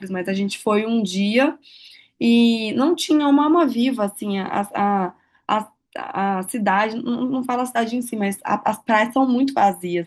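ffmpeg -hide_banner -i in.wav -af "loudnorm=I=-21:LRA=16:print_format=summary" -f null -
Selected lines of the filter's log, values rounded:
Input Integrated:    -20.3 LUFS
Input True Peak:      -4.4 dBTP
Input LRA:             4.1 LU
Input Threshold:     -30.5 LUFS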